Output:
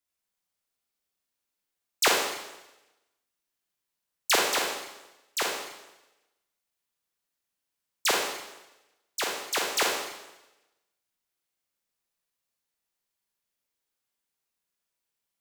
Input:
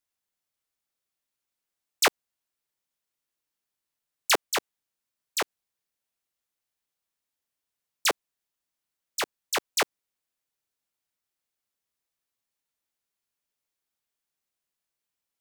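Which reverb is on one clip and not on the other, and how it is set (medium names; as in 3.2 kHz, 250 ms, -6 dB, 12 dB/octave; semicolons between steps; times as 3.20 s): Schroeder reverb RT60 1 s, combs from 32 ms, DRR -1 dB; trim -2 dB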